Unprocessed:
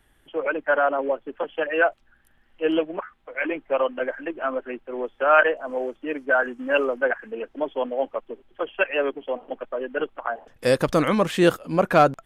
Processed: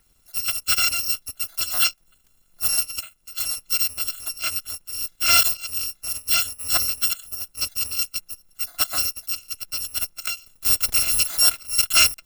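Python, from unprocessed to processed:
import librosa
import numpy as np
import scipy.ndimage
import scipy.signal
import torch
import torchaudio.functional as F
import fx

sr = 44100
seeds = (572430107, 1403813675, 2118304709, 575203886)

y = fx.bit_reversed(x, sr, seeds[0], block=256)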